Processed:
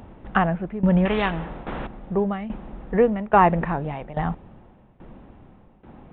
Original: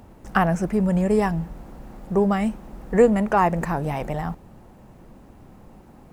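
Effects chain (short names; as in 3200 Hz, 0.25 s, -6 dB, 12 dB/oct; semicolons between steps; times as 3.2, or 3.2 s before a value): tremolo saw down 1.2 Hz, depth 85%; downsampling 8000 Hz; 1.05–1.87 spectral compressor 2:1; gain +4 dB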